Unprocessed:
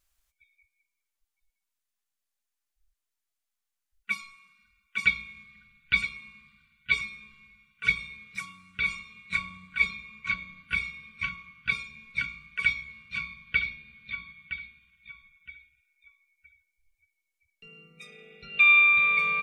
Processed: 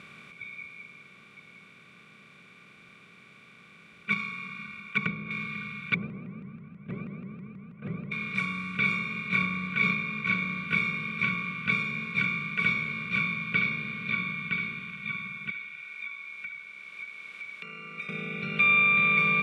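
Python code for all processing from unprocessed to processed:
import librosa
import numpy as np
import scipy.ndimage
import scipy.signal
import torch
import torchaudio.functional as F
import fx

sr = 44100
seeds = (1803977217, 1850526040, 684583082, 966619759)

y = fx.chain(x, sr, fx.env_lowpass_down(base_hz=450.0, full_db=-25.0),
    fx.transient(attack_db=6, sustain_db=-4), at=(4.12, 5.31))
y = fx.chain(y, sr, fx.cheby1_lowpass(hz=670.0, order=4),
    fx.vibrato_shape(shape='saw_up', rate_hz=6.2, depth_cents=250.0), at=(5.94, 8.12))
y = fx.chain(y, sr, fx.air_absorb(metres=83.0),
    fx.sustainer(db_per_s=150.0), at=(9.28, 10.33))
y = fx.chain(y, sr, fx.highpass(hz=1400.0, slope=12),
    fx.high_shelf(hz=5600.0, db=-10.5),
    fx.band_squash(depth_pct=100), at=(15.5, 18.09))
y = fx.bin_compress(y, sr, power=0.4)
y = scipy.signal.sosfilt(scipy.signal.butter(4, 160.0, 'highpass', fs=sr, output='sos'), y)
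y = fx.tilt_eq(y, sr, slope=-4.0)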